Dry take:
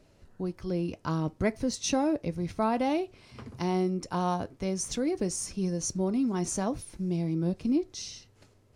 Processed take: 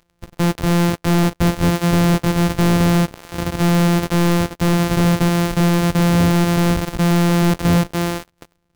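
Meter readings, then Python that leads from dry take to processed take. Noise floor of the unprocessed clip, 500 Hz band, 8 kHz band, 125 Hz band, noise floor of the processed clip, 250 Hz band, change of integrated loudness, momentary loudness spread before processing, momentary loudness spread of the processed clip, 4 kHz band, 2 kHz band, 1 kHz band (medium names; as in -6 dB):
-62 dBFS, +10.0 dB, +6.5 dB, +19.0 dB, -67 dBFS, +13.0 dB, +13.5 dB, 9 LU, 6 LU, +14.5 dB, +18.5 dB, +11.5 dB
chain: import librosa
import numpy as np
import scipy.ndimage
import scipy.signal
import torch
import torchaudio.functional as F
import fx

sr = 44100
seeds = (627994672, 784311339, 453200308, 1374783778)

y = np.r_[np.sort(x[:len(x) // 256 * 256].reshape(-1, 256), axis=1).ravel(), x[len(x) // 256 * 256:]]
y = fx.leveller(y, sr, passes=5)
y = F.gain(torch.from_numpy(y), 3.5).numpy()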